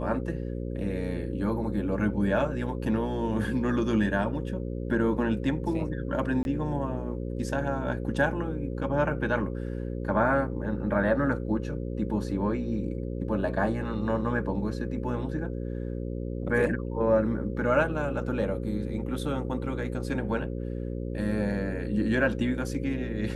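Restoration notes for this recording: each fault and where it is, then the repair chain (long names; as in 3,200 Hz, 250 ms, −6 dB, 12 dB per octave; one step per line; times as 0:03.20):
mains buzz 60 Hz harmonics 9 −33 dBFS
0:06.43–0:06.45: drop-out 21 ms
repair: hum removal 60 Hz, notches 9
repair the gap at 0:06.43, 21 ms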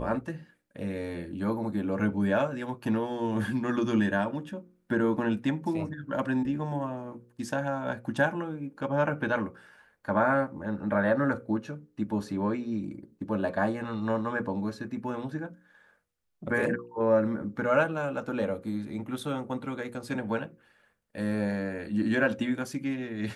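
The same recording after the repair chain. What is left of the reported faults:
none of them is left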